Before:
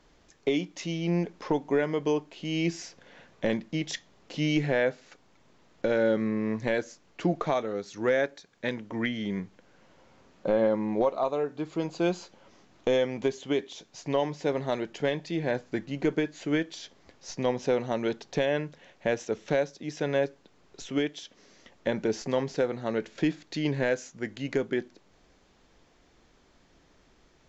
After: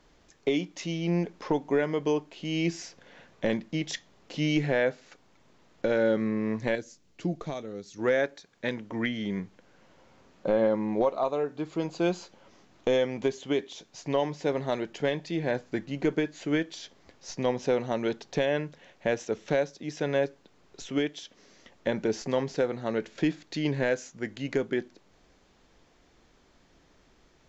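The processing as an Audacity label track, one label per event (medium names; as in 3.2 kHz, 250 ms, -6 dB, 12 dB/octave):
6.750000	7.990000	peaking EQ 1.1 kHz -12 dB 3 oct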